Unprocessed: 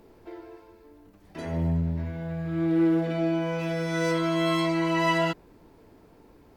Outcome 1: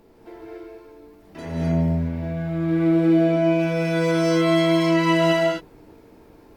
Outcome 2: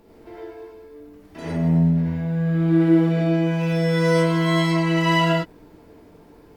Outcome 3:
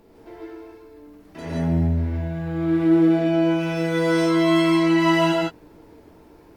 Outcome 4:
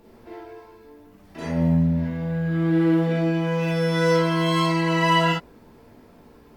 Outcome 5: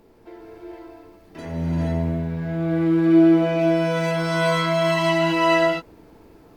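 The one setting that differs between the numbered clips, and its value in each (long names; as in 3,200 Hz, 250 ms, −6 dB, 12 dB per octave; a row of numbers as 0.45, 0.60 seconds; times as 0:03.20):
reverb whose tail is shaped and stops, gate: 290, 130, 190, 80, 500 milliseconds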